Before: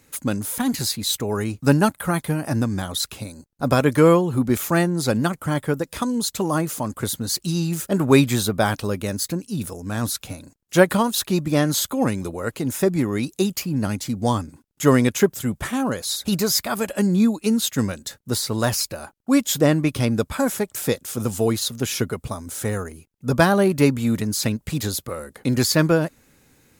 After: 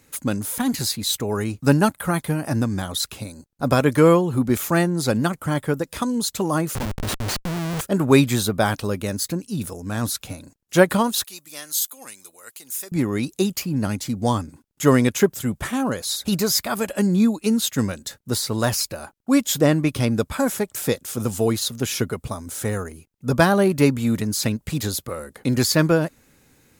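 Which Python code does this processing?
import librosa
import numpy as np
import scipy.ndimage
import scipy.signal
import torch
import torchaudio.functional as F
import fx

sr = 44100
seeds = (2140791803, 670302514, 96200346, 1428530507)

y = fx.schmitt(x, sr, flips_db=-25.0, at=(6.75, 7.81))
y = fx.differentiator(y, sr, at=(11.24, 12.92))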